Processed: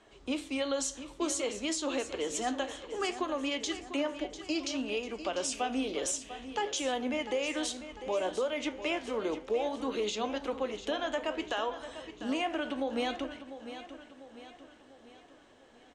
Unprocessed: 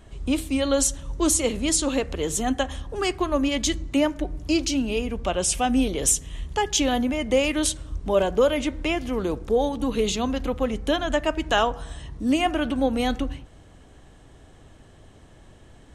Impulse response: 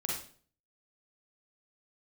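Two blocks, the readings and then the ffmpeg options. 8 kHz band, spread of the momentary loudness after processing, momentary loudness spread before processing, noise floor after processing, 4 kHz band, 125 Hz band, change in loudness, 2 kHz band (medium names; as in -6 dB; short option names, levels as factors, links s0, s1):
-12.0 dB, 8 LU, 6 LU, -58 dBFS, -8.0 dB, under -20 dB, -10.0 dB, -7.5 dB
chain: -filter_complex "[0:a]flanger=delay=9.2:depth=9.8:regen=72:speed=0.59:shape=sinusoidal,acrossover=split=280 7700:gain=0.0891 1 0.0631[s0][s1][s2];[s0][s1][s2]amix=inputs=3:normalize=0,alimiter=limit=0.0668:level=0:latency=1:release=131,asplit=2[s3][s4];[s4]aecho=0:1:697|1394|2091|2788|3485:0.251|0.121|0.0579|0.0278|0.0133[s5];[s3][s5]amix=inputs=2:normalize=0"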